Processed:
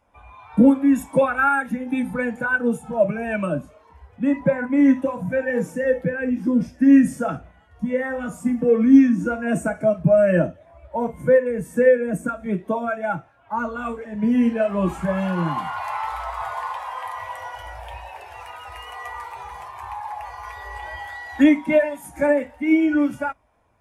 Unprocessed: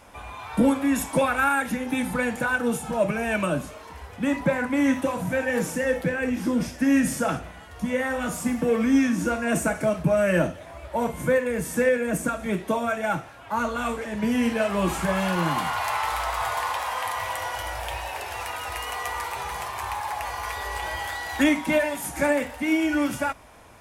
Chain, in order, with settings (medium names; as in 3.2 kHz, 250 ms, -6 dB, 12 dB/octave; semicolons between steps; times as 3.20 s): spectral contrast expander 1.5:1; trim +7 dB